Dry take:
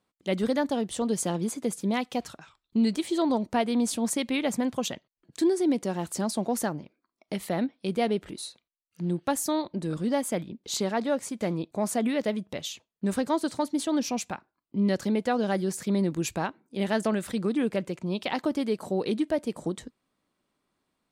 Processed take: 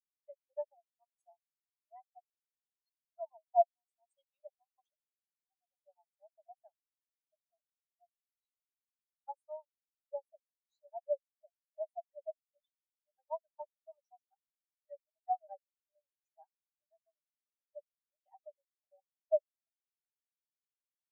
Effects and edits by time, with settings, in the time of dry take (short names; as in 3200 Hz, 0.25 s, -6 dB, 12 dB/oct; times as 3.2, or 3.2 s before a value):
7.43–8.26 compressor 2:1, threshold -38 dBFS
16.44–17.3 compressor 2:1, threshold -38 dBFS
whole clip: steep high-pass 570 Hz 96 dB/oct; notch 2300 Hz, Q 6.1; spectral expander 4:1; gain -1 dB